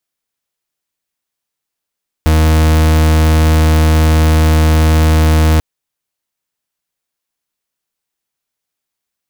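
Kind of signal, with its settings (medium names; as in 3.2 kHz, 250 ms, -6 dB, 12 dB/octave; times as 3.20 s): pulse 78.7 Hz, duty 40% -9 dBFS 3.34 s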